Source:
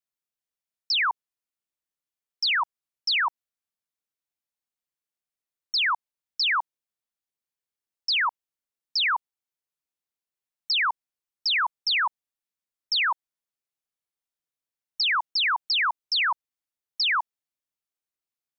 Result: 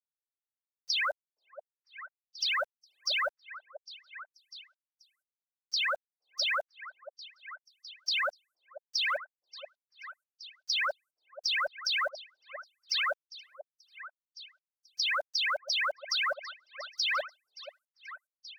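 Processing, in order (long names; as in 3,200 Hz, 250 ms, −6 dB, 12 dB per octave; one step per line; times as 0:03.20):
frequency inversion band by band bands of 500 Hz
reverb reduction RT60 1.8 s
brickwall limiter −25.5 dBFS, peak gain reduction 9 dB
downward compressor 6 to 1, threshold −32 dBFS, peak gain reduction 4.5 dB
bit reduction 11 bits
echo through a band-pass that steps 484 ms, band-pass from 570 Hz, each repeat 1.4 octaves, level −10 dB
level +4.5 dB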